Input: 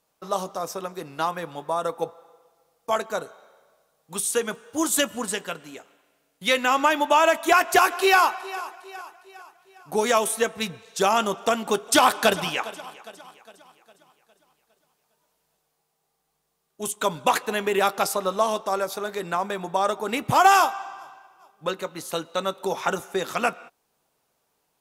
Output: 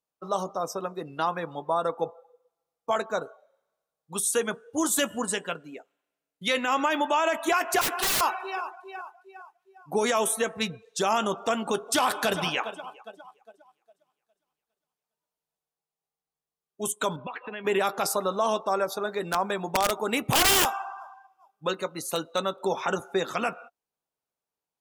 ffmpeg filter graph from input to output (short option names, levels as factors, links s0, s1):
-filter_complex "[0:a]asettb=1/sr,asplit=3[s0][s1][s2];[s0]atrim=end=7.814[s3];[s1]atrim=start=7.81:end=8.21,asetpts=PTS-STARTPTS,afade=t=in:d=0.004:c=qsin,afade=t=out:st=0.396:d=0.004:c=qsin,lowshelf=f=100:g=-11,aeval=exprs='(mod(10*val(0)+1,2)-1)/10':c=same[s4];[s2]atrim=start=8.206[s5];[s3][s4]acrossfade=d=0.004:c1=hsin:c2=qsin[s6];[s6][s5]acrossfade=d=0.004:c1=qsin:c2=hsin,asettb=1/sr,asplit=3[s7][s8][s9];[s7]atrim=end=17.164[s10];[s8]atrim=start=17.16:end=17.65,asetpts=PTS-STARTPTS,afade=t=in:d=0.004:c=qsin,afade=t=out:st=0.486:d=0.004:c=qsin,lowpass=f=3200:w=0.5412,lowpass=f=3200:w=1.3066,acompressor=threshold=0.0178:ratio=5:attack=3.2:release=140:knee=1:detection=peak,adynamicequalizer=threshold=0.00251:dfrequency=1800:dqfactor=0.7:tfrequency=1800:tqfactor=0.7:attack=5:release=100:ratio=0.375:range=3:mode=boostabove:tftype=highshelf[s11];[s9]atrim=start=17.646[s12];[s10][s11]acrossfade=d=0.004:c1=hsin:c2=qsin[s13];[s13][s12]acrossfade=d=0.004:c1=qsin:c2=hsin,asettb=1/sr,asplit=3[s14][s15][s16];[s14]atrim=end=19.214[s17];[s15]atrim=start=19.21:end=22.41,asetpts=PTS-STARTPTS,afade=t=in:d=0.004:c=qsin,afade=t=out:st=3.196:d=0.004:c=qsin,highshelf=f=5000:g=5,aeval=exprs='(mod(4.22*val(0)+1,2)-1)/4.22':c=same[s18];[s16]atrim=start=22.406[s19];[s17][s18]acrossfade=d=0.004:c1=hsin:c2=qsin[s20];[s20][s19]acrossfade=d=0.004:c1=qsin:c2=hsin,afftdn=nr=19:nf=-41,alimiter=limit=0.178:level=0:latency=1:release=32"